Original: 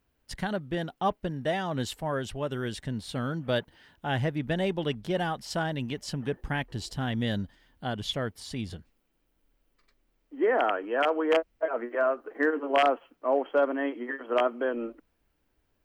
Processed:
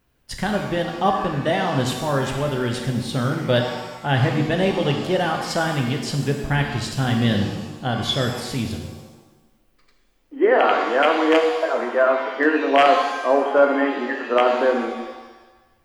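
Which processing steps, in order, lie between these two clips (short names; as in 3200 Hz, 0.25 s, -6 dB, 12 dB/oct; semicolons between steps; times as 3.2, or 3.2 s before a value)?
vibrato 13 Hz 9.4 cents; shimmer reverb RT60 1.1 s, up +7 st, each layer -8 dB, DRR 2.5 dB; gain +7 dB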